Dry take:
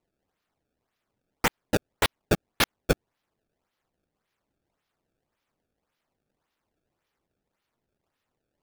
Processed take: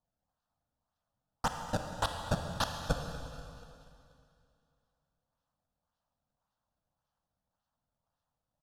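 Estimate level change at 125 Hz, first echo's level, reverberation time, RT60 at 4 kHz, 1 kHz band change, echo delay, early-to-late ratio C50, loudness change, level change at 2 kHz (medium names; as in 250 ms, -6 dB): -3.5 dB, -17.5 dB, 2.6 s, 2.5 s, -3.0 dB, 241 ms, 4.5 dB, -8.5 dB, -11.5 dB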